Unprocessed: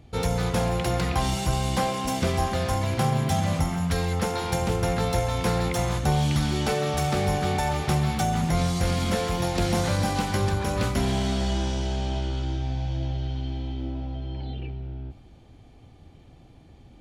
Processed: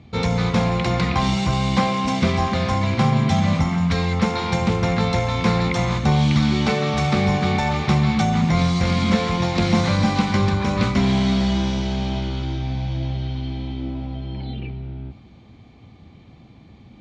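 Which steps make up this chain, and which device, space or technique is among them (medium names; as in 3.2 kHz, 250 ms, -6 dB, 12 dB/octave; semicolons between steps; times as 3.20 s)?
car door speaker (cabinet simulation 93–6600 Hz, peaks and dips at 210 Hz +9 dB, 1.1 kHz +7 dB, 2.2 kHz +8 dB, 3.9 kHz +6 dB); bass shelf 150 Hz +7.5 dB; trim +1.5 dB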